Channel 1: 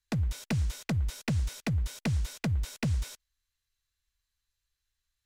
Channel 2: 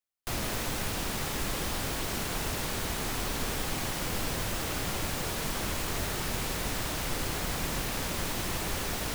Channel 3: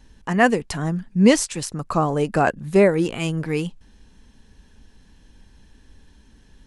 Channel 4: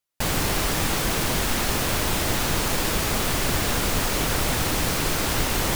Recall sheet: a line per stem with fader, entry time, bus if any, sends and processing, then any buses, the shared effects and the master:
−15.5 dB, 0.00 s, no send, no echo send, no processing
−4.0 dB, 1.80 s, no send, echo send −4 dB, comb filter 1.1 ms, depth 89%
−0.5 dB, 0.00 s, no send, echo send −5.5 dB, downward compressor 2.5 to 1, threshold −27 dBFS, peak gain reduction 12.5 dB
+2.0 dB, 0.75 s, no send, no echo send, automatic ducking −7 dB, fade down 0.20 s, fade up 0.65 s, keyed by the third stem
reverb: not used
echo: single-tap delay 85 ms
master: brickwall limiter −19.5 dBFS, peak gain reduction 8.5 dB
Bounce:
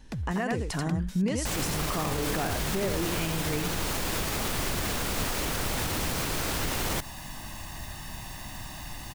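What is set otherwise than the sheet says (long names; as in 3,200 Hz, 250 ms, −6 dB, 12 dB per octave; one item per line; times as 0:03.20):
stem 1 −15.5 dB → −5.0 dB
stem 2 −4.0 dB → −12.0 dB
stem 4: entry 0.75 s → 1.25 s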